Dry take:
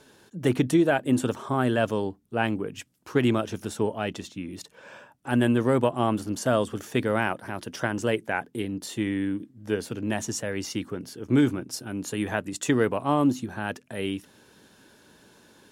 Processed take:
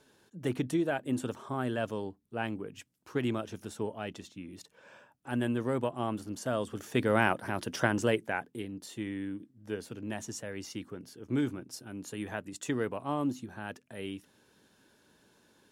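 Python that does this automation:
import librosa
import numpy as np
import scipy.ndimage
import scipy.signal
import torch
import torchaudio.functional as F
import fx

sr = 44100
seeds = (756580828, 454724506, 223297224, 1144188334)

y = fx.gain(x, sr, db=fx.line((6.55, -9.0), (7.24, 0.0), (7.9, 0.0), (8.7, -9.5)))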